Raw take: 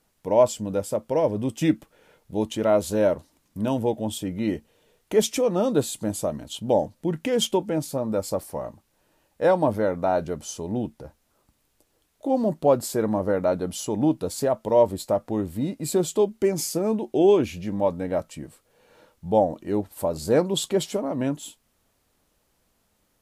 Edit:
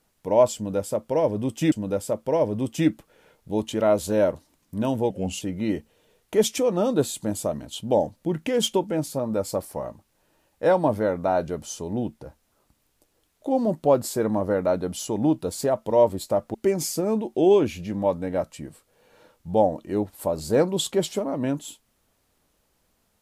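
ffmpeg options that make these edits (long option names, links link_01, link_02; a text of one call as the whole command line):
ffmpeg -i in.wav -filter_complex "[0:a]asplit=5[link_01][link_02][link_03][link_04][link_05];[link_01]atrim=end=1.722[link_06];[link_02]atrim=start=0.548:end=3.934[link_07];[link_03]atrim=start=3.93:end=4.2,asetpts=PTS-STARTPTS,asetrate=37926,aresample=44100,atrim=end_sample=13845,asetpts=PTS-STARTPTS[link_08];[link_04]atrim=start=4.196:end=15.332[link_09];[link_05]atrim=start=16.318[link_10];[link_06][link_07]acrossfade=duration=0.004:curve1=hsin:curve2=hsin[link_11];[link_11][link_08]acrossfade=duration=0.004:curve1=hsin:curve2=hsin[link_12];[link_12][link_09]acrossfade=duration=0.004:curve1=hsin:curve2=hsin[link_13];[link_13][link_10]acrossfade=duration=0.004:curve1=hsin:curve2=hsin" out.wav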